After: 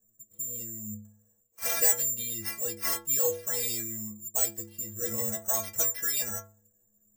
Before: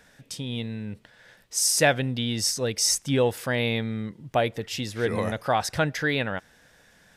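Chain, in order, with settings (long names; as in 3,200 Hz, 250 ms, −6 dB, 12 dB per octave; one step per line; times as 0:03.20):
low-pass that shuts in the quiet parts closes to 320 Hz, open at −18.5 dBFS
bad sample-rate conversion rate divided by 6×, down none, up zero stuff
stiff-string resonator 100 Hz, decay 0.64 s, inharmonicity 0.03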